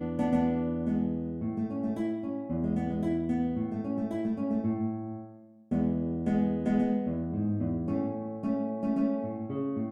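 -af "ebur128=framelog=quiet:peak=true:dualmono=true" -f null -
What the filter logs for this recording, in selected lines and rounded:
Integrated loudness:
  I:         -27.8 LUFS
  Threshold: -38.0 LUFS
Loudness range:
  LRA:         1.7 LU
  Threshold: -48.0 LUFS
  LRA low:   -28.8 LUFS
  LRA high:  -27.1 LUFS
True peak:
  Peak:      -15.0 dBFS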